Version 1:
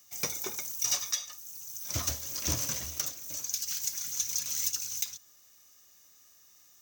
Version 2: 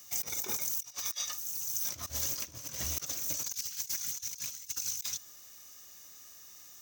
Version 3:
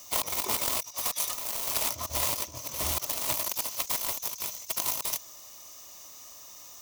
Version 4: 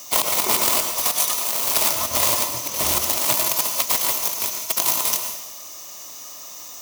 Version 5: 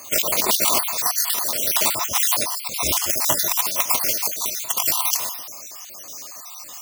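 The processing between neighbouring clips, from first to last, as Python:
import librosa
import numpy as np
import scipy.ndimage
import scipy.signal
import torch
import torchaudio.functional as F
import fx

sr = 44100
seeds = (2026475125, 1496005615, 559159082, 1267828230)

y1 = fx.over_compress(x, sr, threshold_db=-39.0, ratio=-0.5)
y1 = F.gain(torch.from_numpy(y1), 2.5).numpy()
y2 = fx.self_delay(y1, sr, depth_ms=0.28)
y2 = fx.graphic_eq_31(y2, sr, hz=(160, 630, 1000, 1600), db=(-7, 8, 10, -9))
y2 = F.gain(torch.from_numpy(y2), 7.5).numpy()
y3 = scipy.signal.sosfilt(scipy.signal.butter(2, 120.0, 'highpass', fs=sr, output='sos'), y2)
y3 = fx.rev_plate(y3, sr, seeds[0], rt60_s=0.84, hf_ratio=1.0, predelay_ms=85, drr_db=4.5)
y3 = F.gain(torch.from_numpy(y3), 9.0).numpy()
y4 = fx.spec_dropout(y3, sr, seeds[1], share_pct=48)
y4 = F.gain(torch.from_numpy(y4), 3.0).numpy()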